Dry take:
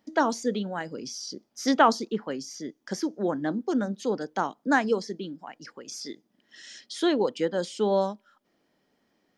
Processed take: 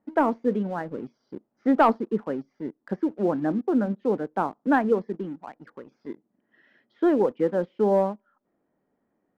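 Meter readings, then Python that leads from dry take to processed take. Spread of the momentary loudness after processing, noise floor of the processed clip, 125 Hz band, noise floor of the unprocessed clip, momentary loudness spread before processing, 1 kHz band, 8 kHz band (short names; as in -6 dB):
20 LU, -76 dBFS, +3.5 dB, -72 dBFS, 16 LU, +1.0 dB, under -20 dB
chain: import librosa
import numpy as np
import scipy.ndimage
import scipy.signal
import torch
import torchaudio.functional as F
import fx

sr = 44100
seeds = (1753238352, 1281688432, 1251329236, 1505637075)

y = scipy.signal.sosfilt(scipy.signal.bessel(4, 1200.0, 'lowpass', norm='mag', fs=sr, output='sos'), x)
y = fx.leveller(y, sr, passes=1)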